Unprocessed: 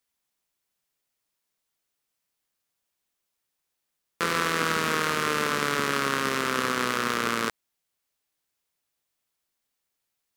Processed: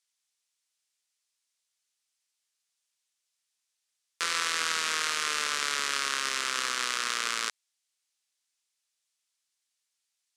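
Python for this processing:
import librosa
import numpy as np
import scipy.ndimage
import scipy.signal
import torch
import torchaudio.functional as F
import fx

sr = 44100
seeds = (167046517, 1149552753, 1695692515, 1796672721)

y = fx.weighting(x, sr, curve='ITU-R 468')
y = y * 10.0 ** (-8.0 / 20.0)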